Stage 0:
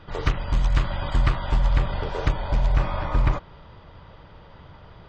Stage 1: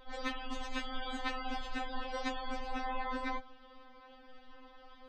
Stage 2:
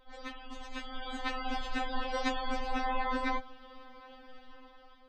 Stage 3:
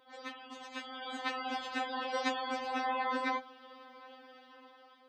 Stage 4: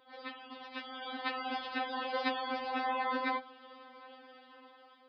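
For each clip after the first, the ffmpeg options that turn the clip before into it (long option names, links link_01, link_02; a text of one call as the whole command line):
ffmpeg -i in.wav -af "afftfilt=real='re*3.46*eq(mod(b,12),0)':imag='im*3.46*eq(mod(b,12),0)':win_size=2048:overlap=0.75,volume=-3.5dB" out.wav
ffmpeg -i in.wav -af "dynaudnorm=framelen=490:gausssize=5:maxgain=11dB,volume=-6dB" out.wav
ffmpeg -i in.wav -af "highpass=250" out.wav
ffmpeg -i in.wav -af "aresample=11025,aresample=44100" out.wav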